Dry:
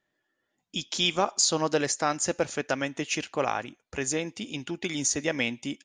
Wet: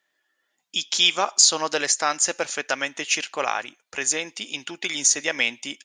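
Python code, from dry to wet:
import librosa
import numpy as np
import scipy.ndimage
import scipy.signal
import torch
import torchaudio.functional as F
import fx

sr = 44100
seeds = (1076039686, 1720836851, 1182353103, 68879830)

y = fx.highpass(x, sr, hz=1400.0, slope=6)
y = y * librosa.db_to_amplitude(8.5)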